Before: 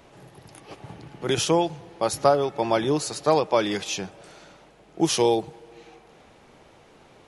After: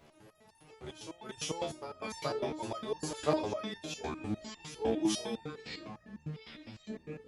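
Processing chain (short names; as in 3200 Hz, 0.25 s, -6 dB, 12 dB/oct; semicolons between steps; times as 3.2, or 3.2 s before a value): reverse echo 0.426 s -12.5 dB; echoes that change speed 0.173 s, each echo -6 st, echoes 3, each echo -6 dB; stepped resonator 9.9 Hz 75–900 Hz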